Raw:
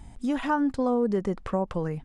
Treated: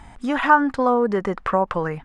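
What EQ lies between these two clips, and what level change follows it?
bell 1400 Hz +15 dB 2.5 oct; 0.0 dB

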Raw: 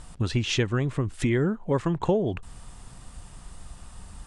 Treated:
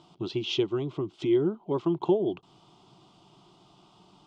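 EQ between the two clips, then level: speaker cabinet 180–5000 Hz, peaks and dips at 230 Hz +10 dB, 350 Hz +8 dB, 540 Hz +9 dB, 1800 Hz +4 dB, 3200 Hz +8 dB; fixed phaser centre 350 Hz, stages 8; -4.0 dB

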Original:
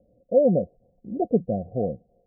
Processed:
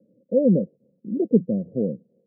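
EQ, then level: running mean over 60 samples; HPF 170 Hz 24 dB/oct; +7.5 dB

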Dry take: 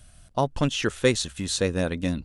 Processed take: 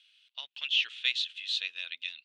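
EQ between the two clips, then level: Butterworth band-pass 3100 Hz, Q 2.3; +5.0 dB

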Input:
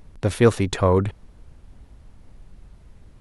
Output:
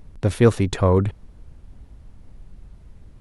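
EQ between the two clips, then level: low shelf 360 Hz +5 dB; -2.0 dB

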